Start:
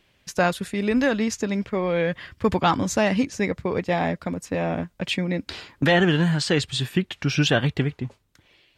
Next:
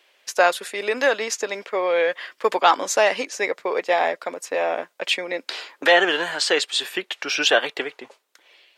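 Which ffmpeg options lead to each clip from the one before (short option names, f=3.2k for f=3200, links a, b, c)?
-af "highpass=f=440:w=0.5412,highpass=f=440:w=1.3066,volume=5dB"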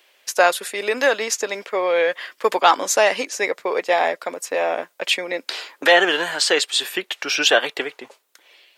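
-af "highshelf=f=9.7k:g=10,volume=1.5dB"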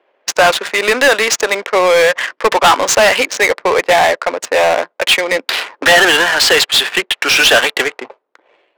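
-filter_complex "[0:a]adynamicsmooth=sensitivity=6:basefreq=510,asplit=2[a][b];[b]highpass=f=720:p=1,volume=22dB,asoftclip=type=tanh:threshold=-1.5dB[c];[a][c]amix=inputs=2:normalize=0,lowpass=f=7.2k:p=1,volume=-6dB"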